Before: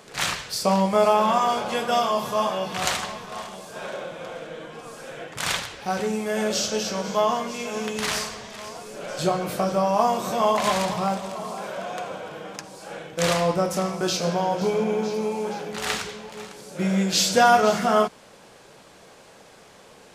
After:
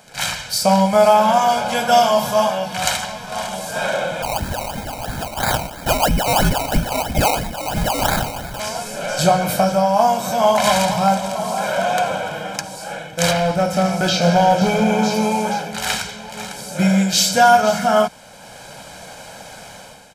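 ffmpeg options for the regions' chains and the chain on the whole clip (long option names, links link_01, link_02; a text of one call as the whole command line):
ffmpeg -i in.wav -filter_complex "[0:a]asettb=1/sr,asplit=3[link_01][link_02][link_03];[link_01]atrim=end=4.224[link_04];[link_02]atrim=start=4.22:end=8.6,asetpts=PTS-STARTPTS,afade=type=in:duration=0.004:curve=qsin,afade=type=out:start_time=4.376:duration=0.004:curve=qsin,lowpass=frequency=2700:width_type=q:width=0.5098,lowpass=frequency=2700:width_type=q:width=0.6013,lowpass=frequency=2700:width_type=q:width=0.9,lowpass=frequency=2700:width_type=q:width=2.563,afreqshift=-3200,acrusher=samples=21:mix=1:aa=0.000001:lfo=1:lforange=12.6:lforate=3[link_05];[link_03]atrim=start=8.596[link_06];[link_04][link_05]acrossfade=duration=0.004:curve1=hsin:curve2=qsin[link_07];[link_07][link_06]acrossfade=duration=0.004:curve1=qsin:curve2=hsin,asettb=1/sr,asplit=3[link_08][link_09][link_10];[link_08]atrim=end=13.314[link_11];[link_09]atrim=start=13.31:end=14.91,asetpts=PTS-STARTPTS,afade=type=in:duration=0.004:curve=qsin,afade=type=out:start_time=1.596:duration=0.004:curve=qsin,acrossover=split=4300[link_12][link_13];[link_13]acompressor=threshold=-46dB:ratio=4:attack=1:release=60[link_14];[link_12][link_14]amix=inputs=2:normalize=0,equalizer=frequency=1000:width_type=o:width=0.24:gain=-7.5,asoftclip=type=hard:threshold=-17.5dB[link_15];[link_10]atrim=start=14.906[link_16];[link_11][link_15]acrossfade=duration=0.004:curve1=hsin:curve2=qsin[link_17];[link_17][link_16]acrossfade=duration=0.004:curve1=qsin:curve2=hsin,highshelf=frequency=8000:gain=6,aecho=1:1:1.3:0.69,dynaudnorm=framelen=160:gausssize=5:maxgain=11.5dB,volume=-1dB" out.wav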